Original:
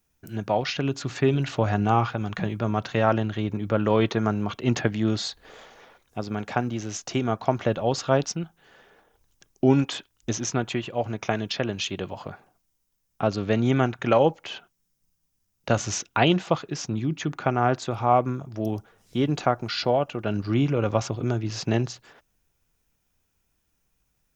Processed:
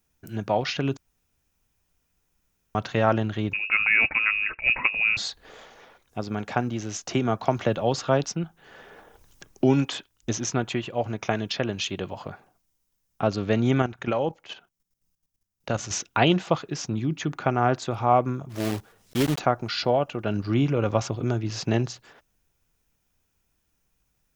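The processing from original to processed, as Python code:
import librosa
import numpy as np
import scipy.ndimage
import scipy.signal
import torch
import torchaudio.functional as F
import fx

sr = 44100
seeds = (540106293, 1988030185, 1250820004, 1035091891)

y = fx.freq_invert(x, sr, carrier_hz=2700, at=(3.53, 5.17))
y = fx.band_squash(y, sr, depth_pct=40, at=(7.08, 9.93))
y = fx.level_steps(y, sr, step_db=12, at=(13.82, 15.91))
y = fx.block_float(y, sr, bits=3, at=(18.49, 19.38), fade=0.02)
y = fx.edit(y, sr, fx.room_tone_fill(start_s=0.97, length_s=1.78), tone=tone)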